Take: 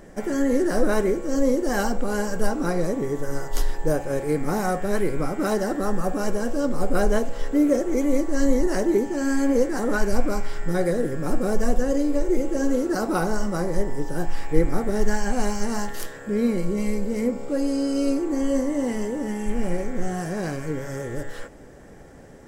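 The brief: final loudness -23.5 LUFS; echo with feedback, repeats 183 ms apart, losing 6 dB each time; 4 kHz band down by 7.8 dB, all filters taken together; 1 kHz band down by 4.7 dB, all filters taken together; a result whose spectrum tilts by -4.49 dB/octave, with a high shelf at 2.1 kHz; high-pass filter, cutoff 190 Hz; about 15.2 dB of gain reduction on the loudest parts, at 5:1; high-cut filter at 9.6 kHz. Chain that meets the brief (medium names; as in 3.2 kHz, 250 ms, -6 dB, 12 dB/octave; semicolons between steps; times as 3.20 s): high-pass 190 Hz; low-pass 9.6 kHz; peaking EQ 1 kHz -5.5 dB; treble shelf 2.1 kHz -4.5 dB; peaking EQ 4 kHz -5.5 dB; compression 5:1, threshold -35 dBFS; feedback delay 183 ms, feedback 50%, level -6 dB; trim +13 dB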